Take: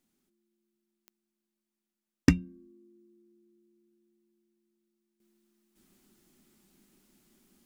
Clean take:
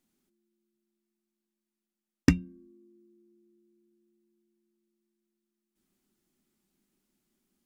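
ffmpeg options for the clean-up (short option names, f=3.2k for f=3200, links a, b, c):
-af "adeclick=t=4,asetnsamples=n=441:p=0,asendcmd='5.2 volume volume -12dB',volume=0dB"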